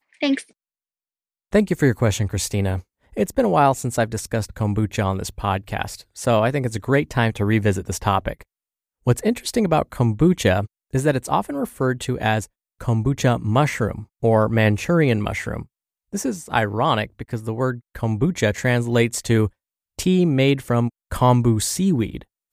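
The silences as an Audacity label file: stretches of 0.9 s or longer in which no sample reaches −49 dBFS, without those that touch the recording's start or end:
0.510000	1.520000	silence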